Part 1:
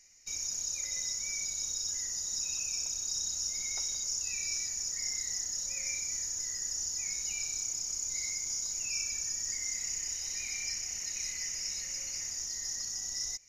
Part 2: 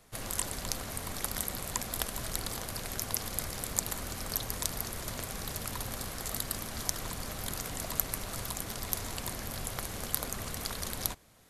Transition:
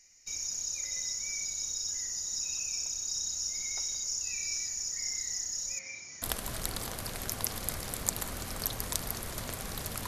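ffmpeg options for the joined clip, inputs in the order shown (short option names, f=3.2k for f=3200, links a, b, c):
-filter_complex "[0:a]asettb=1/sr,asplit=3[a][b][c];[a]atrim=end=5.794[d];[b]atrim=start=5.79:end=6.22,asetpts=PTS-STARTPTS,afade=t=in:d=0.004:c=qsin,afade=t=out:st=0.426:d=0.004:c=qsin,highpass=120,lowpass=3.4k[e];[c]atrim=start=6.216[f];[d][e]acrossfade=d=0.004:c1=hsin:c2=qsin[g];[g][f]acrossfade=d=0.004:c1=qsin:c2=hsin,apad=whole_dur=10.07,atrim=end=10.07,atrim=end=6.222[h];[1:a]atrim=start=1.918:end=5.77[i];[h][i]acrossfade=d=0.004:c1=hsin:c2=hsin"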